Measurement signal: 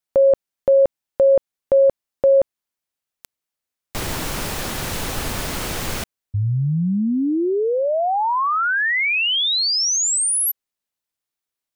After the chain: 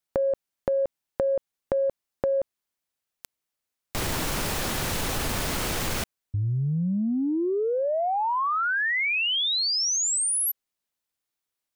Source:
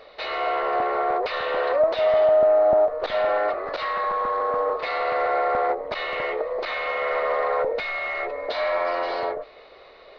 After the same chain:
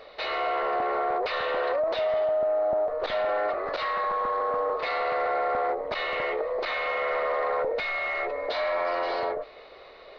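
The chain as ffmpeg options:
-af "acompressor=threshold=0.0501:ratio=4:attack=6.8:release=24:knee=6:detection=peak"

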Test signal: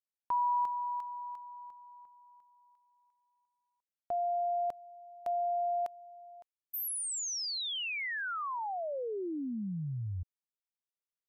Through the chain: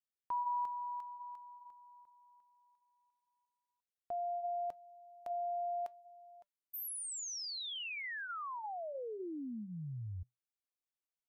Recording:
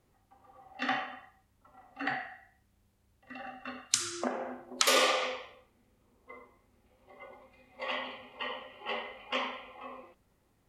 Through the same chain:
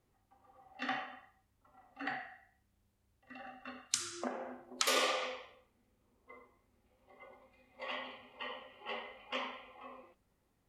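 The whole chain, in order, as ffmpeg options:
-af "flanger=delay=2.5:depth=2:regen=-86:speed=0.62:shape=triangular,volume=0.841"

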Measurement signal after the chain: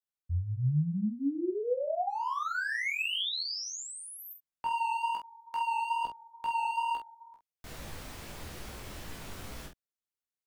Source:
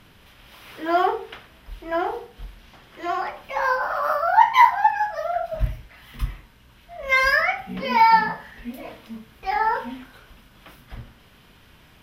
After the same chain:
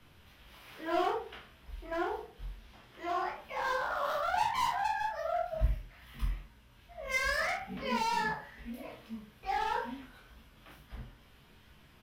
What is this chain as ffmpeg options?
-filter_complex "[0:a]acrossover=split=4700[s0][s1];[s1]acompressor=threshold=0.0112:ratio=4:attack=1:release=60[s2];[s0][s2]amix=inputs=2:normalize=0,lowshelf=f=140:g=3.5,acrossover=split=260|580|4900[s3][s4][s5][s6];[s5]volume=14.1,asoftclip=hard,volume=0.0708[s7];[s3][s4][s7][s6]amix=inputs=4:normalize=0,flanger=delay=18:depth=6.6:speed=2.3,aecho=1:1:14|47:0.473|0.501,volume=0.447"

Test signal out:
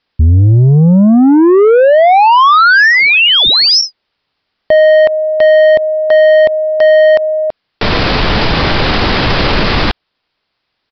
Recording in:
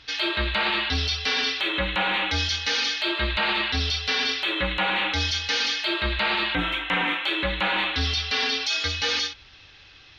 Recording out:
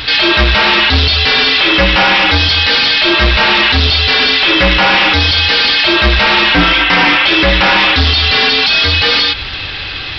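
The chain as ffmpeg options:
-af "aresample=11025,asoftclip=type=tanh:threshold=0.0422,aresample=44100,alimiter=level_in=37.6:limit=0.891:release=50:level=0:latency=1,volume=0.708"

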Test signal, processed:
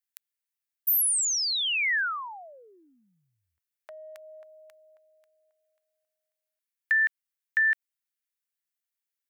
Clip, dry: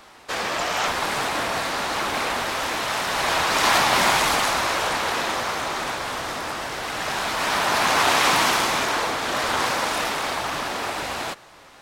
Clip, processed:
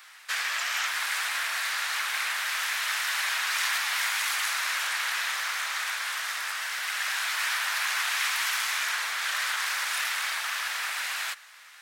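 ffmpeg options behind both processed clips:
-af "acompressor=threshold=0.0708:ratio=6,highpass=f=1700:t=q:w=1.8,highshelf=f=8000:g=10,volume=0.668"

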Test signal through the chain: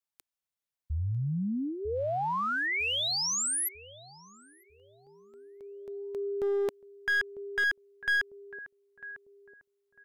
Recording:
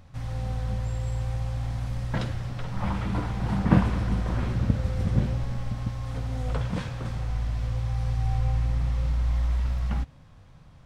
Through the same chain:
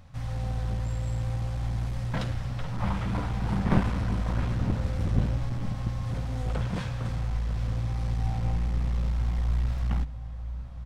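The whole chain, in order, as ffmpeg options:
-filter_complex "[0:a]equalizer=f=360:w=4:g=-8.5,asplit=2[s0][s1];[s1]adelay=949,lowpass=f=910:p=1,volume=0.251,asplit=2[s2][s3];[s3]adelay=949,lowpass=f=910:p=1,volume=0.4,asplit=2[s4][s5];[s5]adelay=949,lowpass=f=910:p=1,volume=0.4,asplit=2[s6][s7];[s7]adelay=949,lowpass=f=910:p=1,volume=0.4[s8];[s0][s2][s4][s6][s8]amix=inputs=5:normalize=0,aeval=exprs='clip(val(0),-1,0.0473)':c=same"

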